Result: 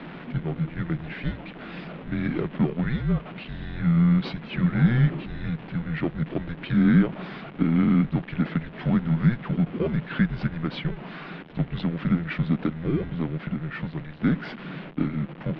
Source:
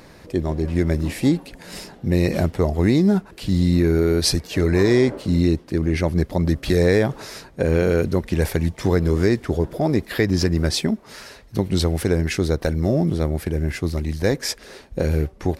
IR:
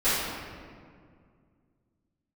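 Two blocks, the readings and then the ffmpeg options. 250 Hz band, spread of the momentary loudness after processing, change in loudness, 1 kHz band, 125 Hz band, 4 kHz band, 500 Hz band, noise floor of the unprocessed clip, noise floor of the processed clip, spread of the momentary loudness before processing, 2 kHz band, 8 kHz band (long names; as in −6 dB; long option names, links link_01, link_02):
−3.0 dB, 15 LU, −5.0 dB, −4.5 dB, −3.5 dB, −12.5 dB, −14.5 dB, −46 dBFS, −41 dBFS, 8 LU, −4.5 dB, below −40 dB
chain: -filter_complex "[0:a]aeval=exprs='val(0)+0.5*0.0376*sgn(val(0))':channel_layout=same,asplit=2[link_01][link_02];[link_02]acrusher=samples=22:mix=1:aa=0.000001,volume=-11dB[link_03];[link_01][link_03]amix=inputs=2:normalize=0,highpass=frequency=170:width_type=q:width=0.5412,highpass=frequency=170:width_type=q:width=1.307,lowpass=frequency=3400:width_type=q:width=0.5176,lowpass=frequency=3400:width_type=q:width=0.7071,lowpass=frequency=3400:width_type=q:width=1.932,afreqshift=-240,lowshelf=frequency=120:width_type=q:width=3:gain=-10,volume=-6dB"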